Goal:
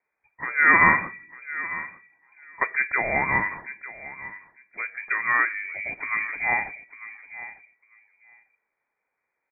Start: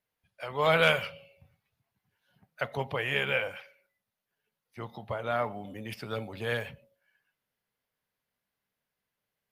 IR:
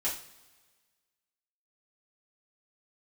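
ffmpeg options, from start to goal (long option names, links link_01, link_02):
-filter_complex "[0:a]asplit=2[link_01][link_02];[link_02]adelay=899,lowpass=frequency=1100:poles=1,volume=-13dB,asplit=2[link_03][link_04];[link_04]adelay=899,lowpass=frequency=1100:poles=1,volume=0.16[link_05];[link_01][link_03][link_05]amix=inputs=3:normalize=0,lowpass=frequency=2100:width_type=q:width=0.5098,lowpass=frequency=2100:width_type=q:width=0.6013,lowpass=frequency=2100:width_type=q:width=0.9,lowpass=frequency=2100:width_type=q:width=2.563,afreqshift=-2500,volume=8dB"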